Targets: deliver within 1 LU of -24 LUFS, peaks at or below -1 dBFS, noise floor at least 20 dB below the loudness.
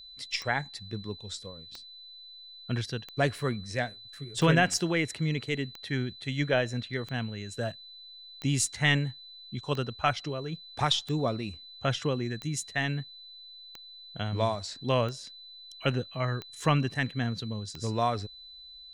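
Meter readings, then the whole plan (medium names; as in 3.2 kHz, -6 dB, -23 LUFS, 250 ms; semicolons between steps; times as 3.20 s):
clicks found 14; steady tone 4 kHz; tone level -46 dBFS; loudness -30.5 LUFS; peak level -9.0 dBFS; loudness target -24.0 LUFS
-> de-click; band-stop 4 kHz, Q 30; trim +6.5 dB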